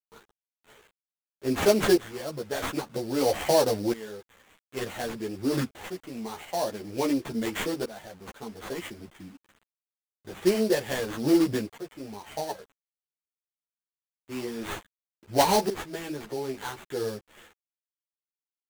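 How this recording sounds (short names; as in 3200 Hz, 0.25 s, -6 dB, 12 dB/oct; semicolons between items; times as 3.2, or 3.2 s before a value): aliases and images of a low sample rate 5100 Hz, jitter 20%; tremolo saw up 0.51 Hz, depth 85%; a quantiser's noise floor 10-bit, dither none; a shimmering, thickened sound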